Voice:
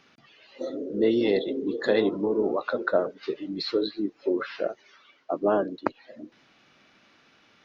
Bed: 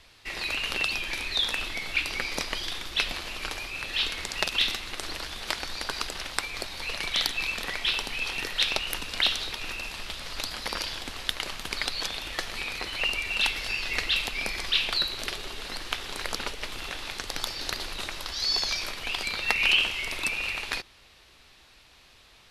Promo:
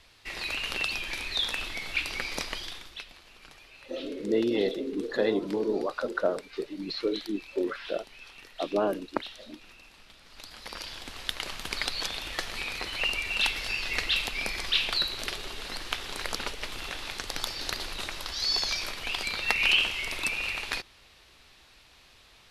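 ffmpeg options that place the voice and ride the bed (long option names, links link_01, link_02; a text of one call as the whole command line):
ffmpeg -i stem1.wav -i stem2.wav -filter_complex "[0:a]adelay=3300,volume=-3.5dB[link_01];[1:a]volume=14.5dB,afade=type=out:start_time=2.45:duration=0.59:silence=0.16788,afade=type=in:start_time=10.26:duration=1.4:silence=0.141254[link_02];[link_01][link_02]amix=inputs=2:normalize=0" out.wav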